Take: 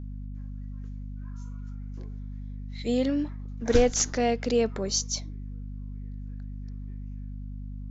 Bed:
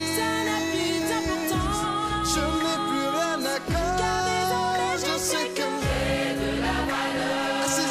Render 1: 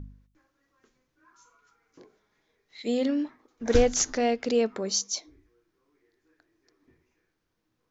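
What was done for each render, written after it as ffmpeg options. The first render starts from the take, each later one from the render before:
-af "bandreject=f=50:t=h:w=4,bandreject=f=100:t=h:w=4,bandreject=f=150:t=h:w=4,bandreject=f=200:t=h:w=4,bandreject=f=250:t=h:w=4"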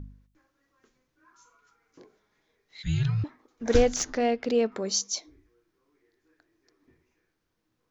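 -filter_complex "[0:a]asettb=1/sr,asplit=3[a][b][c];[a]atrim=end=2.834[d];[b]atrim=start=2.83:end=3.24,asetpts=PTS-STARTPTS,afade=t=in:d=0.004:c=qsin,afade=t=out:st=0.406:d=0.004:c=qsin,afreqshift=-400[e];[c]atrim=start=3.236[f];[d][e]acrossfade=d=0.004:c1=hsin:c2=qsin[g];[g][f]acrossfade=d=0.004:c1=qsin:c2=hsin,asettb=1/sr,asplit=3[h][i][j];[h]atrim=end=3.964[k];[i]atrim=start=3.96:end=4.72,asetpts=PTS-STARTPTS,afade=t=in:d=0.004:c=qsin,afade=t=out:st=0.756:d=0.004:c=qsin,adynamicsmooth=sensitivity=1:basefreq=4.6k[l];[j]atrim=start=4.716[m];[k][l]acrossfade=d=0.004:c1=hsin:c2=qsin[n];[n][m]acrossfade=d=0.004:c1=qsin:c2=hsin"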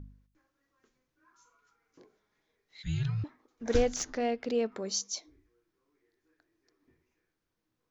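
-af "volume=-5.5dB"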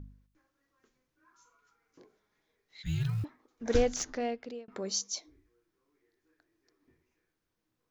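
-filter_complex "[0:a]asettb=1/sr,asplit=3[a][b][c];[a]atrim=end=2.854[d];[b]atrim=start=2.85:end=3.25,asetpts=PTS-STARTPTS,afade=t=in:d=0.004:c=qsin,afade=t=out:st=0.396:d=0.004:c=qsin,acrusher=bits=8:mode=log:mix=0:aa=0.000001[e];[c]atrim=start=3.246[f];[d][e]acrossfade=d=0.004:c1=hsin:c2=qsin[g];[g][f]acrossfade=d=0.004:c1=qsin:c2=hsin,asplit=2[h][i];[h]atrim=end=4.68,asetpts=PTS-STARTPTS,afade=t=out:st=3.86:d=0.82:c=qsin[j];[i]atrim=start=4.68,asetpts=PTS-STARTPTS,afade=t=in:d=0.004:c=hsin[k];[j][k]concat=n=2:v=0:a=1"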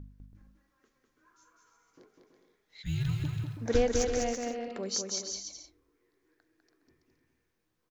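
-af "aecho=1:1:200|330|414.5|469.4|505.1:0.631|0.398|0.251|0.158|0.1"

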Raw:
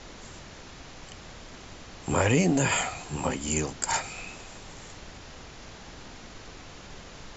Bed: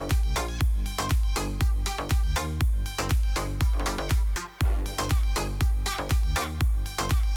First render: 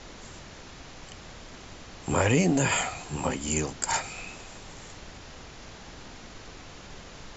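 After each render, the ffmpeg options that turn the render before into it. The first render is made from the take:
-af anull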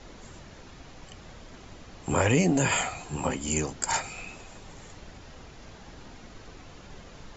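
-af "afftdn=nr=6:nf=-46"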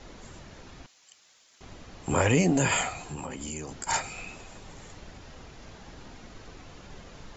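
-filter_complex "[0:a]asettb=1/sr,asplit=3[a][b][c];[a]atrim=end=0.864[d];[b]atrim=start=0.86:end=1.61,asetpts=PTS-STARTPTS,afade=t=in:d=0.004:c=qsin,afade=t=out:st=0.746:d=0.004:c=qsin,aderivative[e];[c]atrim=start=1.606[f];[d][e]acrossfade=d=0.004:c1=hsin:c2=qsin[g];[g][f]acrossfade=d=0.004:c1=qsin:c2=hsin,asettb=1/sr,asplit=3[h][i][j];[h]atrim=end=2.914[k];[i]atrim=start=2.91:end=3.87,asetpts=PTS-STARTPTS,afade=t=in:d=0.004:c=qsin,afade=t=out:st=0.956:d=0.004:c=qsin,acompressor=threshold=-33dB:ratio=6:attack=3.2:release=140:knee=1:detection=peak[l];[j]atrim=start=3.866[m];[k][l]acrossfade=d=0.004:c1=hsin:c2=qsin[n];[n][m]acrossfade=d=0.004:c1=qsin:c2=hsin"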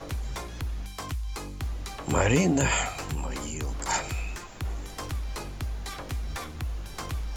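-filter_complex "[1:a]volume=-8.5dB[a];[0:a][a]amix=inputs=2:normalize=0"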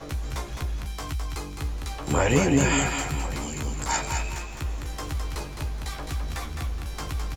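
-filter_complex "[0:a]asplit=2[a][b];[b]adelay=14,volume=-5.5dB[c];[a][c]amix=inputs=2:normalize=0,aecho=1:1:211|422|633|844:0.531|0.17|0.0544|0.0174"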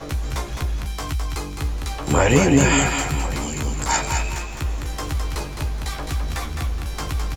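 -af "volume=5.5dB,alimiter=limit=-2dB:level=0:latency=1"

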